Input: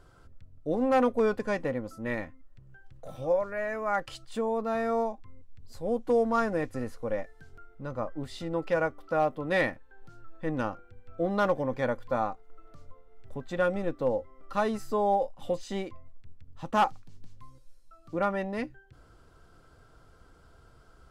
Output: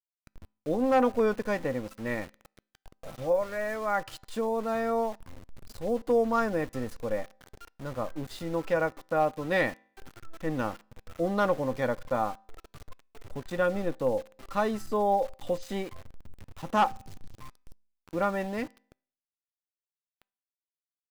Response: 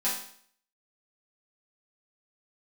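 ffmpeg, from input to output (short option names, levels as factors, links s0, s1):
-filter_complex "[0:a]aeval=exprs='val(0)*gte(abs(val(0)),0.0075)':c=same,asplit=2[s0][s1];[1:a]atrim=start_sample=2205,lowpass=5200[s2];[s1][s2]afir=irnorm=-1:irlink=0,volume=0.0282[s3];[s0][s3]amix=inputs=2:normalize=0"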